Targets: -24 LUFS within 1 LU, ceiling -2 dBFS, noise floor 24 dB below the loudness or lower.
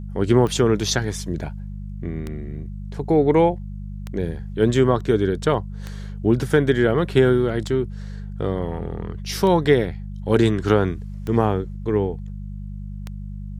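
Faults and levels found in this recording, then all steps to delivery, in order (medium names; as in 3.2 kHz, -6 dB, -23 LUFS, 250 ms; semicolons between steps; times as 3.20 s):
clicks found 8; hum 50 Hz; highest harmonic 200 Hz; hum level -29 dBFS; loudness -21.0 LUFS; peak level -4.0 dBFS; loudness target -24.0 LUFS
-> de-click; de-hum 50 Hz, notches 4; trim -3 dB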